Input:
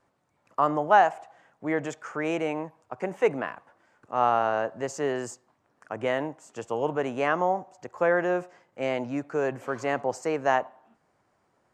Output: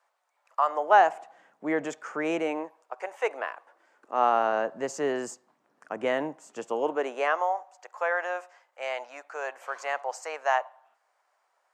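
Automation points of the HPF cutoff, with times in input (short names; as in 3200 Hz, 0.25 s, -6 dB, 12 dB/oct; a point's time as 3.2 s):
HPF 24 dB/oct
0.65 s 640 Hz
1.16 s 190 Hz
2.37 s 190 Hz
3.1 s 610 Hz
4.65 s 170 Hz
6.59 s 170 Hz
7.51 s 640 Hz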